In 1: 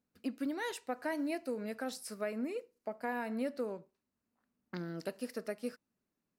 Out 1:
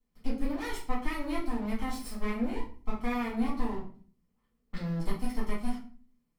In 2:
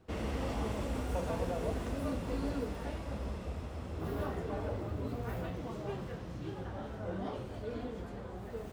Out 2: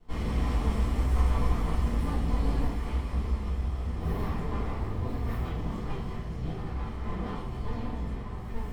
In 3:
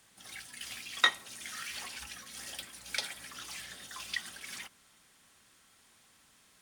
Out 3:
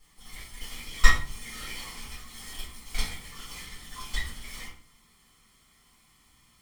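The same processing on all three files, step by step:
lower of the sound and its delayed copy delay 0.94 ms
low-shelf EQ 100 Hz +5 dB
rectangular room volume 36 cubic metres, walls mixed, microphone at 1.8 metres
level −6.5 dB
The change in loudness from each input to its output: +4.0, +7.0, +3.0 LU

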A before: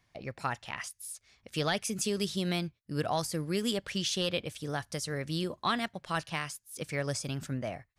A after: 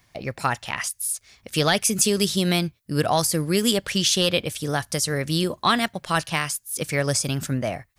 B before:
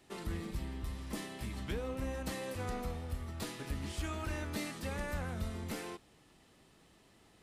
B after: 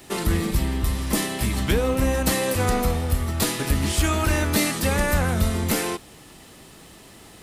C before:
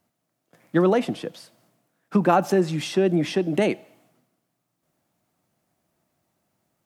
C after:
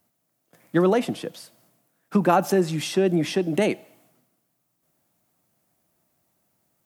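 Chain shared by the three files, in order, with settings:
high-shelf EQ 8,600 Hz +10.5 dB
loudness normalisation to −23 LKFS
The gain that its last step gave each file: +9.5, +17.0, −0.5 decibels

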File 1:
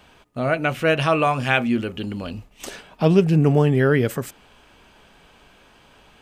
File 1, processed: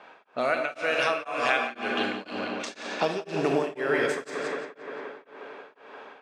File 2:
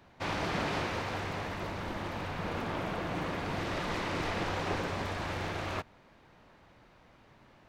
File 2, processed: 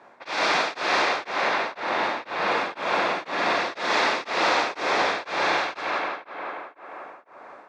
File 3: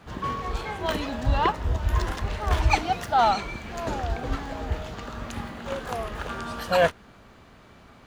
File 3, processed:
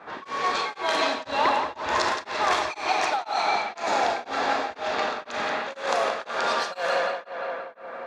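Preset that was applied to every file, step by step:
background noise violet −57 dBFS
band-pass filter 470–5,700 Hz
high-shelf EQ 3,900 Hz +11.5 dB
four-comb reverb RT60 0.76 s, combs from 29 ms, DRR 4.5 dB
downward compressor 4 to 1, threshold −30 dBFS
low-pass that shuts in the quiet parts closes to 1,400 Hz, open at −27 dBFS
notch filter 3,000 Hz, Q 9.4
tape delay 176 ms, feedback 83%, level −4.5 dB, low-pass 3,500 Hz
tremolo along a rectified sine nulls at 2 Hz
normalise the peak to −9 dBFS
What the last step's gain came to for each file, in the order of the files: +6.0, +12.0, +9.0 decibels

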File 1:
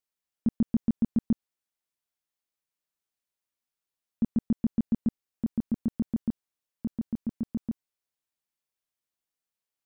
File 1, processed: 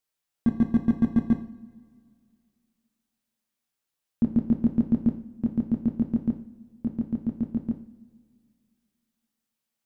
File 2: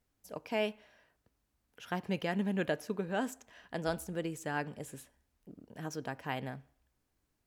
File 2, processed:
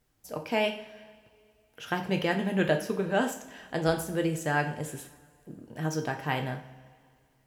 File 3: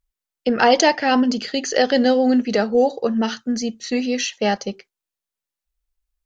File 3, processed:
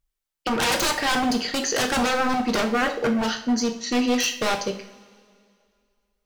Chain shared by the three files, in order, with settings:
wave folding −18 dBFS
coupled-rooms reverb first 0.46 s, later 2.3 s, from −19 dB, DRR 4 dB
normalise the peak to −12 dBFS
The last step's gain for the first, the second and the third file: +3.5, +6.0, 0.0 decibels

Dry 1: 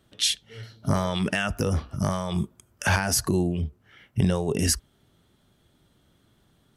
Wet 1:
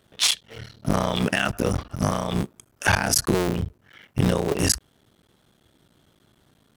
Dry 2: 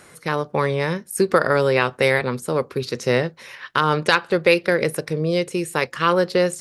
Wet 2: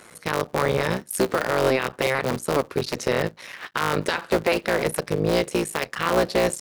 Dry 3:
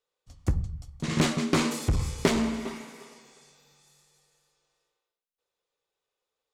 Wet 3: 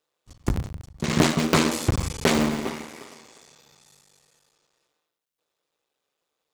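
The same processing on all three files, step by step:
sub-harmonics by changed cycles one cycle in 3, muted
low-shelf EQ 74 Hz −8.5 dB
brickwall limiter −12 dBFS
loudness normalisation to −24 LKFS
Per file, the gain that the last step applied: +5.0, +2.0, +7.0 decibels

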